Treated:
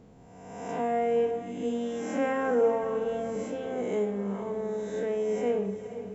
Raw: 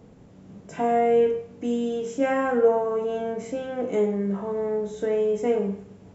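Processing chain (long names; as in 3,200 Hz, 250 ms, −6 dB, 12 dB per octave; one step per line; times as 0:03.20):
peak hold with a rise ahead of every peak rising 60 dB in 1.21 s
0:02.83–0:03.44: low-shelf EQ 130 Hz +8.5 dB
feedback delay with all-pass diffusion 473 ms, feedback 44%, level −11.5 dB
level −6.5 dB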